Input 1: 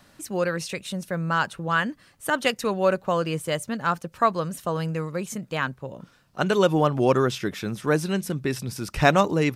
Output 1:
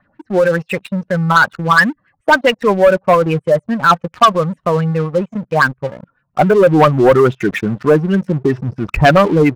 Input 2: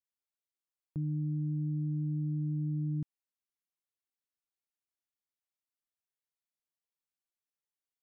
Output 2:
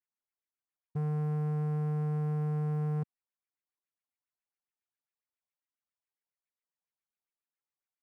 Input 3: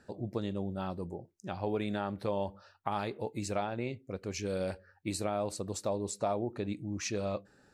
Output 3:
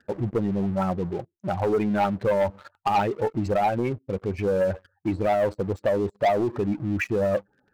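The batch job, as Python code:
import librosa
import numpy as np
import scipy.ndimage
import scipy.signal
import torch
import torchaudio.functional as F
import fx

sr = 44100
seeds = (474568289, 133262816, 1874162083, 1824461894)

y = fx.spec_expand(x, sr, power=1.7)
y = fx.filter_lfo_lowpass(y, sr, shape='sine', hz=7.3, low_hz=790.0, high_hz=2400.0, q=3.2)
y = fx.leveller(y, sr, passes=3)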